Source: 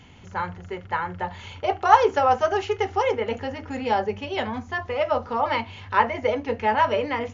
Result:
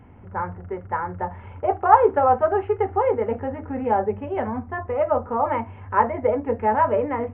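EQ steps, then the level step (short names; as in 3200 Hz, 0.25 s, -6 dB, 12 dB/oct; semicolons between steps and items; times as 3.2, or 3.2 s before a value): Gaussian blur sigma 5.5 samples; bell 160 Hz -7 dB 0.26 oct; +3.5 dB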